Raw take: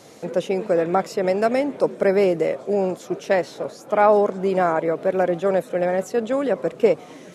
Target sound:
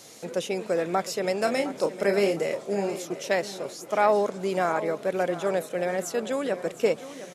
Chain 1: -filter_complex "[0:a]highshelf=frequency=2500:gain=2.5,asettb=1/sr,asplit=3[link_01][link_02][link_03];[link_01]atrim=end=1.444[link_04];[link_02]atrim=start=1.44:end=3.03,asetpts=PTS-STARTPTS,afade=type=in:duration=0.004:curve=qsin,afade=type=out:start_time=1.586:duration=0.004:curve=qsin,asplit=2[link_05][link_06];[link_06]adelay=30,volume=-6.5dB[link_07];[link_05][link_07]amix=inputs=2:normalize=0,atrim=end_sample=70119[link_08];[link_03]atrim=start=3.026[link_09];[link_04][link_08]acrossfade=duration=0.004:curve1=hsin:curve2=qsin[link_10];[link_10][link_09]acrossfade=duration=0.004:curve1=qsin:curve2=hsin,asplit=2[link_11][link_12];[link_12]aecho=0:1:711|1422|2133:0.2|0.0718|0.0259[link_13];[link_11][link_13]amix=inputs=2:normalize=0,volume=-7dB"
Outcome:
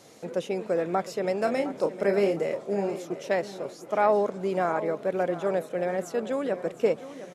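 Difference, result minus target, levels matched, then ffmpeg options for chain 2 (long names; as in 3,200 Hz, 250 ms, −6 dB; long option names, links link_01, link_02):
4,000 Hz band −6.5 dB
-filter_complex "[0:a]highshelf=frequency=2500:gain=13,asettb=1/sr,asplit=3[link_01][link_02][link_03];[link_01]atrim=end=1.444[link_04];[link_02]atrim=start=1.44:end=3.03,asetpts=PTS-STARTPTS,afade=type=in:duration=0.004:curve=qsin,afade=type=out:start_time=1.586:duration=0.004:curve=qsin,asplit=2[link_05][link_06];[link_06]adelay=30,volume=-6.5dB[link_07];[link_05][link_07]amix=inputs=2:normalize=0,atrim=end_sample=70119[link_08];[link_03]atrim=start=3.026[link_09];[link_04][link_08]acrossfade=duration=0.004:curve1=hsin:curve2=qsin[link_10];[link_10][link_09]acrossfade=duration=0.004:curve1=qsin:curve2=hsin,asplit=2[link_11][link_12];[link_12]aecho=0:1:711|1422|2133:0.2|0.0718|0.0259[link_13];[link_11][link_13]amix=inputs=2:normalize=0,volume=-7dB"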